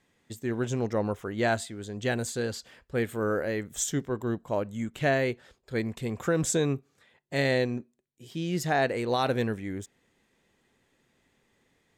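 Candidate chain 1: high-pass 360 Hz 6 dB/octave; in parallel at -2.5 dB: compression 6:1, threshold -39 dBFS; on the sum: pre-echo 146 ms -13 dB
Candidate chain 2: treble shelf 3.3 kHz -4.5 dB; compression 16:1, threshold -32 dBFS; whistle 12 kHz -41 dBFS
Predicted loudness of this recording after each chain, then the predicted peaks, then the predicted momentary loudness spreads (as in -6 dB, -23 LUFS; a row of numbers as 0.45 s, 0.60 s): -30.0 LUFS, -36.5 LUFS; -11.5 dBFS, -22.0 dBFS; 12 LU, 6 LU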